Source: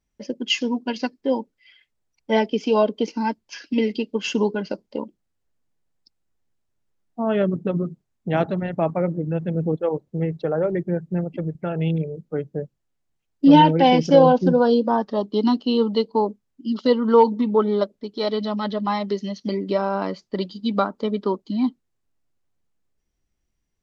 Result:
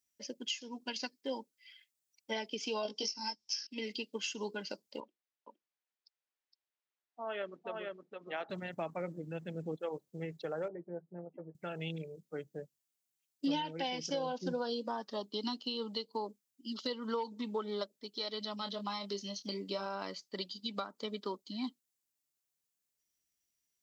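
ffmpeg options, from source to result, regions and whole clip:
-filter_complex "[0:a]asettb=1/sr,asplit=3[a][b][c];[a]atrim=end=2.834[d];[b]atrim=start=2.83:end=3.67,asetpts=PTS-STARTPTS,afade=t=in:d=0.004:c=qsin,afade=t=out:st=0.836:d=0.004:c=qsin,lowpass=f=5.4k:t=q:w=11,equalizer=f=820:w=3.9:g=7.5,asplit=2[e][f];[f]adelay=19,volume=-2.5dB[g];[e][g]amix=inputs=2:normalize=0,atrim=end_sample=37044[h];[c]atrim=start=3.666[i];[d][h]acrossfade=d=0.004:c1=hsin:c2=qsin[j];[j][i]acrossfade=d=0.004:c1=qsin:c2=hsin,asettb=1/sr,asplit=3[k][l][m];[k]atrim=end=5.004[n];[l]atrim=start=5:end=8.5,asetpts=PTS-STARTPTS,afade=t=in:d=0.004:c=qsin,afade=t=out:st=3.496:d=0.004:c=qsin,highpass=470,lowpass=2.9k,aecho=1:1:464:0.596,atrim=end_sample=154350[o];[m]atrim=start=8.496[p];[n][o]acrossfade=d=0.004:c1=hsin:c2=qsin[q];[q][p]acrossfade=d=0.004:c1=qsin:c2=hsin,asettb=1/sr,asplit=3[r][s][t];[r]atrim=end=10.684[u];[s]atrim=start=10.68:end=11.55,asetpts=PTS-STARTPTS,afade=t=in:d=0.004:c=qsin,afade=t=out:st=0.866:d=0.004:c=qsin,lowpass=f=1k:w=0.5412,lowpass=f=1k:w=1.3066,aemphasis=mode=production:type=riaa,asplit=2[v][w];[w]adelay=12,volume=-7.5dB[x];[v][x]amix=inputs=2:normalize=0,atrim=end_sample=38367[y];[t]atrim=start=11.546[z];[u][y]acrossfade=d=0.004:c1=hsin:c2=qsin[aa];[aa][z]acrossfade=d=0.004:c1=qsin:c2=hsin,asettb=1/sr,asplit=3[ab][ac][ad];[ab]atrim=end=18.574[ae];[ac]atrim=start=18.57:end=19.86,asetpts=PTS-STARTPTS,afade=t=in:d=0.004:c=qsin,afade=t=out:st=1.286:d=0.004:c=qsin,equalizer=f=1.9k:w=4.7:g=-9,asplit=2[af][ag];[ag]adelay=25,volume=-8dB[ah];[af][ah]amix=inputs=2:normalize=0,atrim=end_sample=56889[ai];[ad]atrim=start=19.856[aj];[ae][ai]acrossfade=d=0.004:c1=hsin:c2=qsin[ak];[ak][aj]acrossfade=d=0.004:c1=qsin:c2=hsin,aderivative,acompressor=threshold=-40dB:ratio=6,lowshelf=f=410:g=11.5,volume=3.5dB"

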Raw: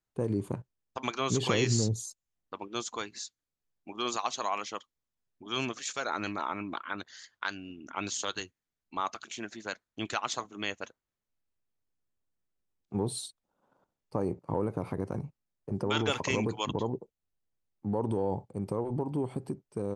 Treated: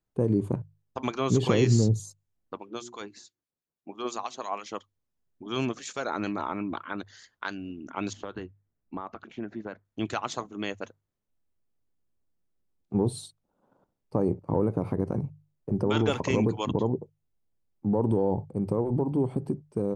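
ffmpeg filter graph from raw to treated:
-filter_complex "[0:a]asettb=1/sr,asplit=3[a][b][c];[a]atrim=end=2.574[d];[b]atrim=start=2.57:end=4.66,asetpts=PTS-STARTPTS,afade=t=in:d=0.004:c=qsin,afade=t=out:st=2.086:d=0.004:c=qsin,highpass=f=170:p=1,bandreject=f=60:t=h:w=6,bandreject=f=120:t=h:w=6,bandreject=f=180:t=h:w=6,bandreject=f=240:t=h:w=6,bandreject=f=300:t=h:w=6,bandreject=f=360:t=h:w=6,acrossover=split=1500[e][f];[e]aeval=exprs='val(0)*(1-0.7/2+0.7/2*cos(2*PI*6.1*n/s))':c=same[g];[f]aeval=exprs='val(0)*(1-0.7/2-0.7/2*cos(2*PI*6.1*n/s))':c=same[h];[g][h]amix=inputs=2:normalize=0[i];[c]atrim=start=4.656[j];[d][i]acrossfade=d=0.004:c1=hsin:c2=qsin[k];[k][j]acrossfade=d=0.004:c1=qsin:c2=hsin,asettb=1/sr,asplit=3[l][m][n];[l]atrim=end=8.134[o];[m]atrim=start=8.13:end=9.85,asetpts=PTS-STARTPTS,afade=t=in:d=0.004:c=qsin,afade=t=out:st=1.716:d=0.004:c=qsin,lowpass=2k,lowshelf=f=470:g=4,acompressor=threshold=-36dB:ratio=3:attack=3.2:release=140:knee=1:detection=peak[p];[n]atrim=start=9.846[q];[o][p]acrossfade=d=0.004:c1=hsin:c2=qsin[r];[r][q]acrossfade=d=0.004:c1=qsin:c2=hsin,tiltshelf=f=870:g=5.5,bandreject=f=50:t=h:w=6,bandreject=f=100:t=h:w=6,bandreject=f=150:t=h:w=6,volume=2dB"

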